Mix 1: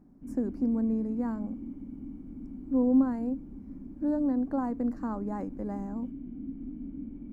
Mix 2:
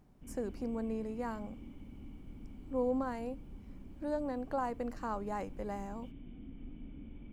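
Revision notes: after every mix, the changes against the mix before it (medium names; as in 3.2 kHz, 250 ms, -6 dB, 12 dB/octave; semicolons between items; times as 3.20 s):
master: remove FFT filter 130 Hz 0 dB, 270 Hz +14 dB, 420 Hz +1 dB, 1.7 kHz -3 dB, 3.1 kHz -17 dB, 4.7 kHz -8 dB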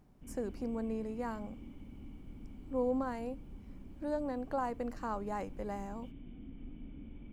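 no change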